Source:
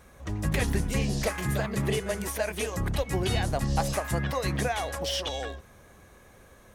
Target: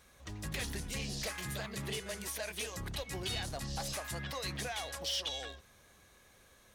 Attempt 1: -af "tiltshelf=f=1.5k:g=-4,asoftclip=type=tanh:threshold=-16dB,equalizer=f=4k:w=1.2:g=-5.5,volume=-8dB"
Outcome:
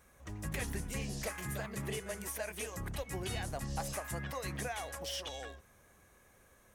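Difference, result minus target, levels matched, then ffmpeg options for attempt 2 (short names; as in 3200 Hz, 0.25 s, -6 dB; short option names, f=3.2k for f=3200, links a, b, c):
soft clip: distortion -12 dB; 4000 Hz band -5.5 dB
-af "tiltshelf=f=1.5k:g=-4,asoftclip=type=tanh:threshold=-24.5dB,equalizer=f=4k:w=1.2:g=5.5,volume=-8dB"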